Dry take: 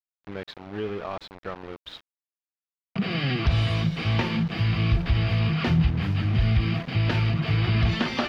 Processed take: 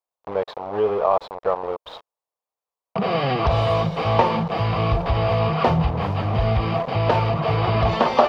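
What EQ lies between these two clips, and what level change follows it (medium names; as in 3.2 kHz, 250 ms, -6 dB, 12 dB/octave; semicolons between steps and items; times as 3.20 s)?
high-order bell 710 Hz +16 dB; 0.0 dB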